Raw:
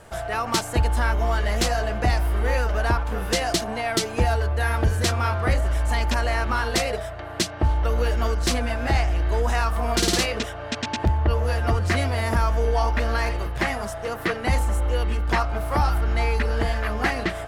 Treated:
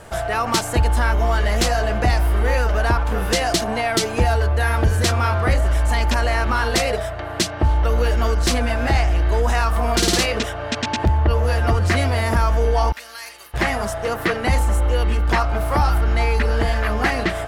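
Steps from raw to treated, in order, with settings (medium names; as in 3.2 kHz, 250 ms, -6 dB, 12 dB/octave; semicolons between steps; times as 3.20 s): in parallel at 0 dB: peak limiter -19 dBFS, peak gain reduction 7.5 dB; 12.92–13.54 s: on the sum: differentiator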